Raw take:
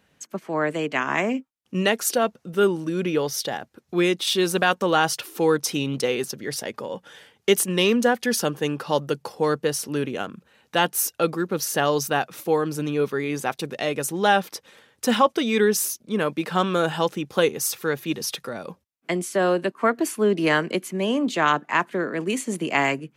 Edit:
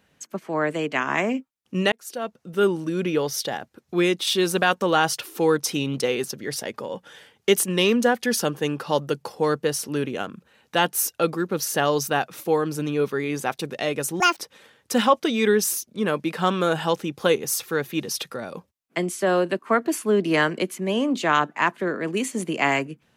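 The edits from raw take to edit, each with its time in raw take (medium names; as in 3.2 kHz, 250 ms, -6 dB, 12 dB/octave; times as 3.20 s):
1.92–2.69 s: fade in
14.20–14.50 s: speed 175%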